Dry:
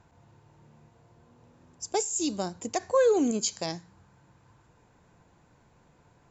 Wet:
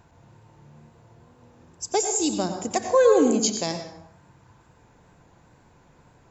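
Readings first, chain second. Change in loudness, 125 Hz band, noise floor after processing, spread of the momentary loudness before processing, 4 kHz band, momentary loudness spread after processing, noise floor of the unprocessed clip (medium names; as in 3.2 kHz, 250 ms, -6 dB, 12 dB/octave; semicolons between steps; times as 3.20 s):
+5.5 dB, +5.5 dB, -57 dBFS, 13 LU, +5.0 dB, 12 LU, -63 dBFS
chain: plate-style reverb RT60 0.76 s, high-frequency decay 0.6×, pre-delay 80 ms, DRR 6 dB; wow and flutter 28 cents; trim +4.5 dB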